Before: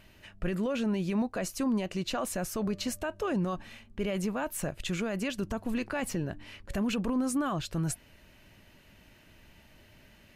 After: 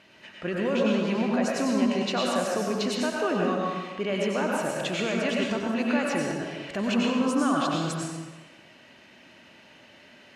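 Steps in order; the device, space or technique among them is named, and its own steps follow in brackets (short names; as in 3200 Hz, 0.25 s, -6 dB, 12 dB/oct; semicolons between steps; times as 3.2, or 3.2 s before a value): supermarket ceiling speaker (BPF 240–6000 Hz; reverb RT60 1.3 s, pre-delay 87 ms, DRR -2 dB); gain +4 dB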